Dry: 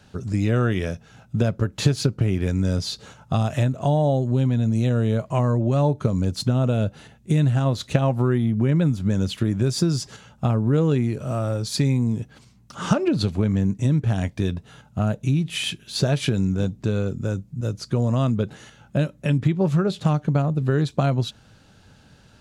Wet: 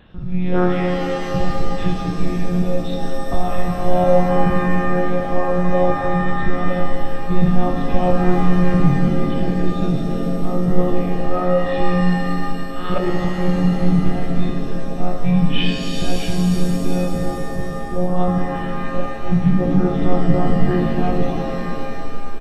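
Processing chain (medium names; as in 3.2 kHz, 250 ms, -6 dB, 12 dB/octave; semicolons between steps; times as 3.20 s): harmonic-percussive split percussive -18 dB; comb 1.7 ms, depth 73%; monotone LPC vocoder at 8 kHz 180 Hz; pitch-shifted reverb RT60 2.9 s, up +7 st, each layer -2 dB, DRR 2.5 dB; trim +5 dB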